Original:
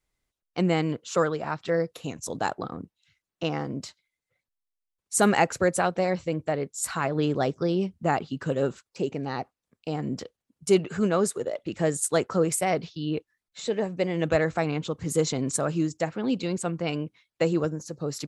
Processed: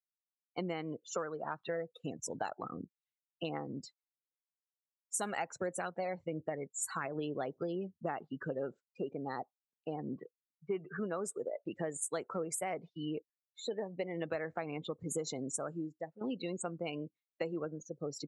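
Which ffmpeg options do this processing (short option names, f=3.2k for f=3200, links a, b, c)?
-filter_complex "[0:a]asplit=3[a][b][c];[a]afade=t=out:st=1.57:d=0.02[d];[b]aphaser=in_gain=1:out_gain=1:delay=1.6:decay=0.36:speed=1.4:type=triangular,afade=t=in:st=1.57:d=0.02,afade=t=out:st=7.05:d=0.02[e];[c]afade=t=in:st=7.05:d=0.02[f];[d][e][f]amix=inputs=3:normalize=0,asettb=1/sr,asplit=3[g][h][i];[g]atrim=end=10.164[j];[h]atrim=start=10.16:end=10.99,asetpts=PTS-STARTPTS,afade=t=in:d=0.004:c=qsin,afade=t=out:st=0.826:d=0.004:c=qsin,highpass=150,equalizer=f=150:t=q:w=4:g=8,equalizer=f=250:t=q:w=4:g=-7,equalizer=f=380:t=q:w=4:g=3,equalizer=f=530:t=q:w=4:g=-8,equalizer=f=1.1k:t=q:w=4:g=6,equalizer=f=1.7k:t=q:w=4:g=4,lowpass=f=2.5k:w=0.5412,lowpass=f=2.5k:w=1.3066[k];[i]atrim=start=10.986[l];[j][k]acrossfade=d=0.004:c1=hsin:c2=qsin[m];[m][l]acrossfade=d=0.004:c1=qsin:c2=hsin,asplit=2[n][o];[n]atrim=end=16.21,asetpts=PTS-STARTPTS,afade=t=out:st=15.36:d=0.85:silence=0.199526[p];[o]atrim=start=16.21,asetpts=PTS-STARTPTS,afade=t=in:d=0.004:c=hsin:silence=0.199526[q];[p][q]concat=n=2:v=0:a=1,afftdn=nr=32:nf=-35,highpass=f=360:p=1,acompressor=threshold=-31dB:ratio=6,volume=-3dB"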